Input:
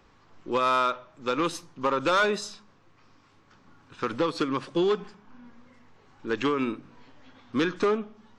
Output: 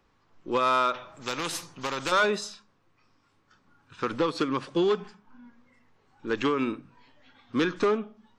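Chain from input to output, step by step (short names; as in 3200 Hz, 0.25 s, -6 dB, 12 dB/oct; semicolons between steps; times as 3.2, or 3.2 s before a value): spectral noise reduction 8 dB; 0.94–2.12 spectral compressor 2:1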